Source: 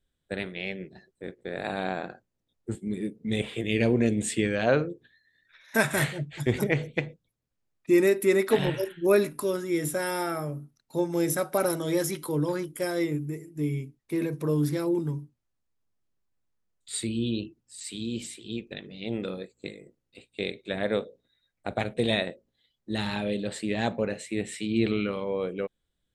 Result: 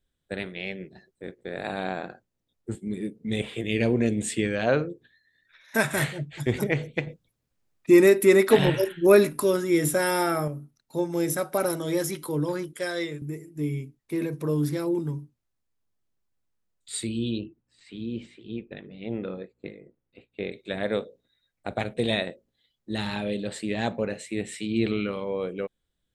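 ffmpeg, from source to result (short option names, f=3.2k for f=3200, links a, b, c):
-filter_complex "[0:a]asettb=1/sr,asplit=3[a][b][c];[a]atrim=end=7.074[d];[b]atrim=start=7.07:end=10.48,asetpts=PTS-STARTPTS,afade=t=in:d=0.004:c=qsin,afade=t=out:st=3.406:d=0.004:c=qsin,acontrast=33[e];[c]atrim=start=10.476[f];[d][e]acrossfade=d=0.004:c1=hsin:c2=qsin[g];[g][f]acrossfade=d=0.004:c1=qsin:c2=hsin,asettb=1/sr,asplit=3[h][i][j];[h]atrim=end=12.734[k];[i]atrim=start=12.73:end=13.22,asetpts=PTS-STARTPTS,afade=t=in:d=0.004:c=qsin,afade=t=out:st=0.486:d=0.004:c=qsin,highpass=200,equalizer=f=290:t=q:w=4:g=-10,equalizer=f=840:t=q:w=4:g=-4,equalizer=f=1.7k:t=q:w=4:g=6,equalizer=f=3.7k:t=q:w=4:g=9,lowpass=f=9.8k:w=0.5412,lowpass=f=9.8k:w=1.3066[l];[j]atrim=start=13.216[m];[k][l]acrossfade=d=0.004:c1=hsin:c2=qsin[n];[n][m]acrossfade=d=0.004:c1=qsin:c2=hsin,asettb=1/sr,asplit=3[o][p][q];[o]atrim=end=17.384[r];[p]atrim=start=17.38:end=20.52,asetpts=PTS-STARTPTS,afade=t=in:d=0.004:c=qsin,afade=t=out:st=3.136:d=0.004:c=qsin,lowpass=2.1k[s];[q]atrim=start=20.516[t];[r][s]acrossfade=d=0.004:c1=hsin:c2=qsin[u];[u][t]acrossfade=d=0.004:c1=qsin:c2=hsin"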